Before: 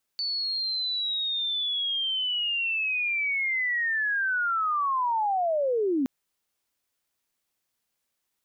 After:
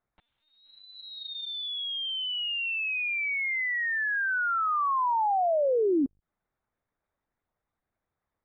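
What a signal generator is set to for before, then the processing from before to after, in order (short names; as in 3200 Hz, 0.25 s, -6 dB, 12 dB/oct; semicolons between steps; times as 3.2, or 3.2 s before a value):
chirp linear 4500 Hz -> 250 Hz -26.5 dBFS -> -22 dBFS 5.87 s
Wiener smoothing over 15 samples; in parallel at -1 dB: compressor, threshold -40 dBFS; on the sum: LPC vocoder at 8 kHz pitch kept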